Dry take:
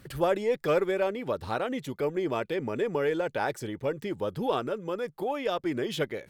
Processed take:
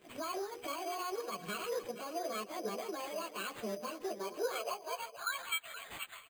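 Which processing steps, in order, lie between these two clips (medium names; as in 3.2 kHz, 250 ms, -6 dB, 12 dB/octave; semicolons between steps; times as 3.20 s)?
frequency-domain pitch shifter +11 st; treble shelf 12 kHz +9.5 dB; hum notches 60/120/180/240/300/360/420/480/540/600 Hz; in parallel at -3 dB: level held to a coarse grid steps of 20 dB; on the sum: peak limiter -25 dBFS, peak gain reduction 8.5 dB; small resonant body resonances 210/2300 Hz, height 10 dB, ringing for 20 ms; high-pass sweep 250 Hz -> 1.9 kHz, 3.95–5.52 s; static phaser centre 1.3 kHz, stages 8; multi-tap echo 161/474 ms -19.5/-13 dB; careless resampling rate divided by 8×, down none, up hold; trim -5 dB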